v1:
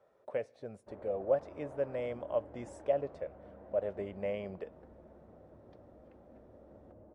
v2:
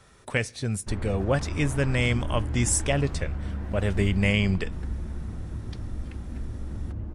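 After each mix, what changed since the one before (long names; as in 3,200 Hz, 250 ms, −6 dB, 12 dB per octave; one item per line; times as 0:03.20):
master: remove resonant band-pass 580 Hz, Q 4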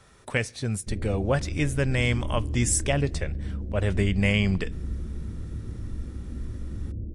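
background: add Butterworth low-pass 520 Hz 36 dB per octave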